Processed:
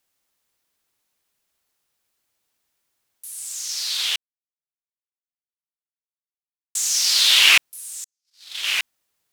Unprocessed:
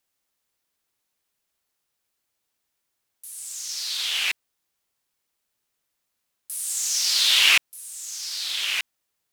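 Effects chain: 4.16–6.75 s: mute; 8.04–8.67 s: gate -26 dBFS, range -55 dB; trim +3.5 dB

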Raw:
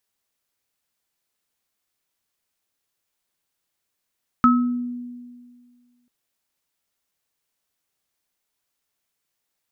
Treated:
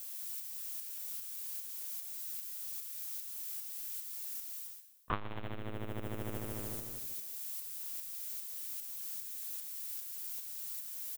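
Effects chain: cycle switcher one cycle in 2, inverted; dynamic bell 440 Hz, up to -6 dB, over -31 dBFS, Q 0.7; tape speed -13%; LPC vocoder at 8 kHz pitch kept; added noise violet -58 dBFS; on a send: frequency-shifting echo 113 ms, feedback 55%, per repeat -120 Hz, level -13 dB; on the sum: tremolo saw up 2.5 Hz, depth 40%; reverse; compression 6:1, threshold -46 dBFS, peak gain reduction 29.5 dB; reverse; transformer saturation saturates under 180 Hz; trim +17 dB

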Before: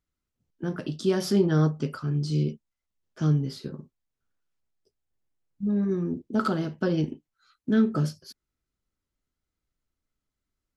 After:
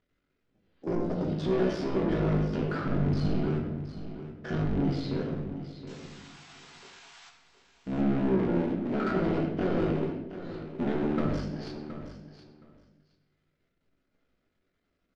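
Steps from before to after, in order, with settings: cycle switcher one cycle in 3, muted; spectral replace 0.41–0.92 s, 860–4900 Hz both; peaking EQ 1 kHz -10.5 dB 0.85 oct; peak limiter -23.5 dBFS, peak gain reduction 11 dB; overdrive pedal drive 25 dB, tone 1.1 kHz, clips at -23.5 dBFS; painted sound noise, 4.18–5.20 s, 650–8100 Hz -52 dBFS; tempo 0.71×; distance through air 120 m; doubling 21 ms -10.5 dB; feedback delay 720 ms, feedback 16%, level -12 dB; on a send at -2.5 dB: reverberation RT60 0.90 s, pre-delay 3 ms; on the sum: trim +1.5 dB

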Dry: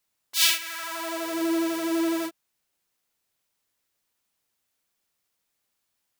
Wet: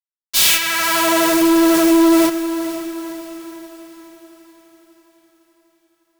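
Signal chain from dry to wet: fuzz box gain 32 dB, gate -40 dBFS; echo that smears into a reverb 494 ms, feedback 51%, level -11 dB; trim +2.5 dB

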